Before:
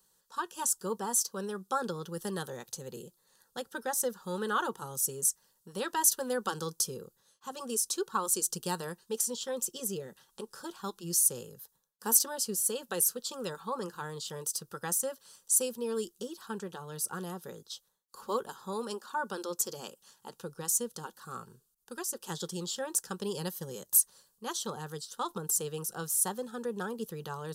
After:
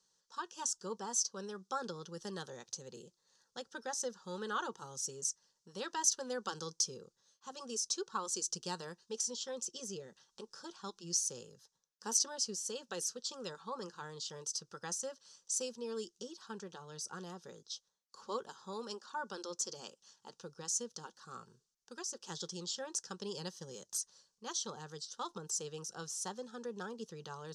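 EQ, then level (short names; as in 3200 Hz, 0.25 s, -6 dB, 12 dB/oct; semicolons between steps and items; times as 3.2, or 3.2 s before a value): ladder low-pass 6600 Hz, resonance 55%; low shelf 88 Hz -6.5 dB; +3.0 dB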